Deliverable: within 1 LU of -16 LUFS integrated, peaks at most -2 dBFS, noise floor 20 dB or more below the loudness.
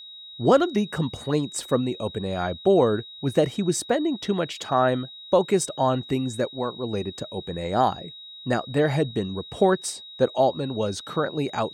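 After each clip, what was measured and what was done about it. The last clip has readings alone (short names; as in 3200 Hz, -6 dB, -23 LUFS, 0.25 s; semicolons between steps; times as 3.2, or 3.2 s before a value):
steady tone 3800 Hz; tone level -40 dBFS; loudness -24.5 LUFS; peak -7.0 dBFS; loudness target -16.0 LUFS
-> notch 3800 Hz, Q 30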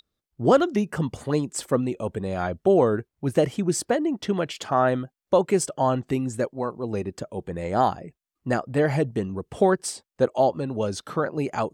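steady tone none; loudness -25.0 LUFS; peak -7.0 dBFS; loudness target -16.0 LUFS
-> gain +9 dB; limiter -2 dBFS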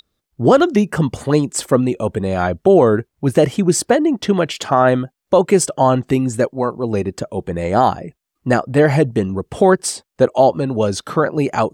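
loudness -16.5 LUFS; peak -2.0 dBFS; noise floor -78 dBFS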